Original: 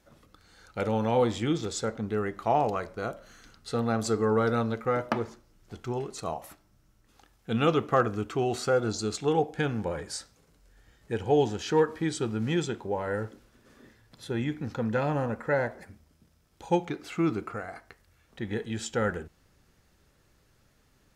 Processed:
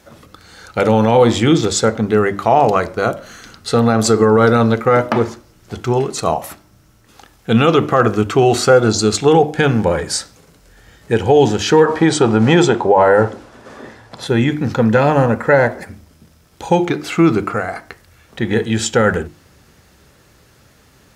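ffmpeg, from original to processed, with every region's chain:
-filter_complex "[0:a]asettb=1/sr,asplit=3[s0][s1][s2];[s0]atrim=end=11.854[s3];[s1]atrim=start=11.85:end=14.27,asetpts=PTS-STARTPTS,afade=t=in:d=0.004:c=qsin,afade=t=out:st=2.416:d=0.004:c=qsin,lowpass=9500,equalizer=f=780:t=o:w=1.6:g=11[s4];[s2]atrim=start=14.266[s5];[s3][s4]acrossfade=d=0.004:c1=hsin:c2=qsin[s6];[s6][s5]acrossfade=d=0.004:c1=qsin:c2=hsin,highpass=55,bandreject=f=50:t=h:w=6,bandreject=f=100:t=h:w=6,bandreject=f=150:t=h:w=6,bandreject=f=200:t=h:w=6,bandreject=f=250:t=h:w=6,bandreject=f=300:t=h:w=6,bandreject=f=350:t=h:w=6,alimiter=level_in=7.5:limit=0.891:release=50:level=0:latency=1,volume=0.891"

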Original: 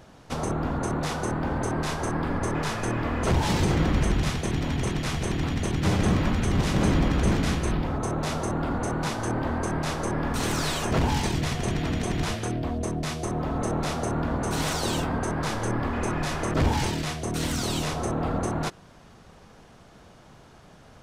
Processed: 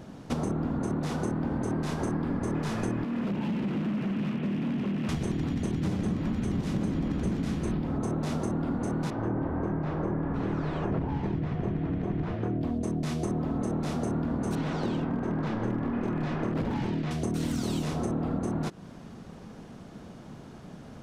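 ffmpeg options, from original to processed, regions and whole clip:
-filter_complex "[0:a]asettb=1/sr,asplit=3[s0][s1][s2];[s0]atrim=end=3.044[s3];[s1]atrim=start=3.04:end=5.09,asetpts=PTS-STARTPTS,afade=t=in:d=0.004:c=qsin,afade=t=out:st=2.046:d=0.004:c=qsin,highpass=f=140:w=0.5412,highpass=f=140:w=1.3066,equalizer=f=210:t=q:w=4:g=10,equalizer=f=760:t=q:w=4:g=-4,equalizer=f=2700:t=q:w=4:g=9,lowpass=f=3000:w=0.5412,lowpass=f=3000:w=1.3066,acrossover=split=700|1600[s4][s5][s6];[s4]acompressor=threshold=0.0355:ratio=4[s7];[s5]acompressor=threshold=0.0112:ratio=4[s8];[s6]acompressor=threshold=0.00708:ratio=4[s9];[s7][s8][s9]amix=inputs=3:normalize=0,volume=37.6,asoftclip=hard,volume=0.0266[s10];[s2]atrim=start=5.086[s11];[s3][s10]acrossfade=d=0.004:c1=hsin:c2=qsin[s12];[s12][s11]acrossfade=d=0.004:c1=qsin:c2=hsin,asettb=1/sr,asplit=3[s13][s14][s15];[s13]atrim=end=9.104[s16];[s14]atrim=start=9.1:end=12.61,asetpts=PTS-STARTPTS,afade=t=in:d=0.004:c=qsin,afade=t=out:st=3.506:d=0.004:c=qsin,lowpass=1700,bandreject=f=230:w=5.4[s17];[s15]atrim=start=12.606[s18];[s16][s17]acrossfade=d=0.004:c1=hsin:c2=qsin[s19];[s19][s18]acrossfade=d=0.004:c1=qsin:c2=hsin,asettb=1/sr,asplit=3[s20][s21][s22];[s20]atrim=end=14.554[s23];[s21]atrim=start=14.55:end=17.11,asetpts=PTS-STARTPTS,afade=t=in:d=0.004:c=qsin,afade=t=out:st=2.556:d=0.004:c=qsin,lowpass=2900,equalizer=f=74:t=o:w=0.32:g=-10.5,aeval=exprs='0.0944*(abs(mod(val(0)/0.0944+3,4)-2)-1)':c=same[s24];[s22]atrim=start=17.106[s25];[s23][s24]acrossfade=d=0.004:c1=hsin:c2=qsin[s26];[s26][s25]acrossfade=d=0.004:c1=qsin:c2=hsin,equalizer=f=220:w=0.72:g=12,acompressor=threshold=0.0501:ratio=6,volume=0.891"

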